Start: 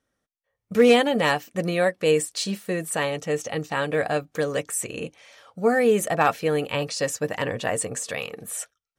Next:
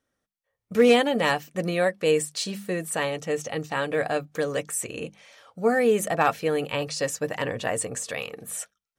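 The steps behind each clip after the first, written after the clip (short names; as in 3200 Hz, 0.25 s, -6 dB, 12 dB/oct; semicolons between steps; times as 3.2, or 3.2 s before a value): notches 50/100/150/200 Hz; gain -1.5 dB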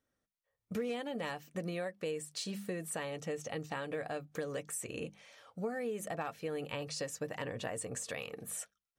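compressor 6:1, threshold -30 dBFS, peak gain reduction 15.5 dB; low shelf 370 Hz +3 dB; gain -6.5 dB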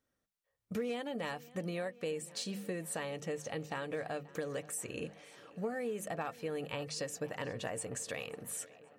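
tape echo 0.532 s, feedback 84%, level -20 dB, low-pass 5600 Hz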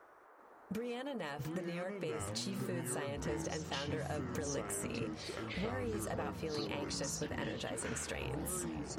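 compressor 5:1, threshold -45 dBFS, peak gain reduction 12.5 dB; band noise 340–1500 Hz -67 dBFS; echoes that change speed 0.389 s, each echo -6 st, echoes 3; gain +6 dB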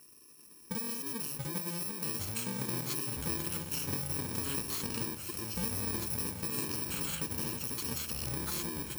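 FFT order left unsorted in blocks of 64 samples; modulation noise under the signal 22 dB; gain +3.5 dB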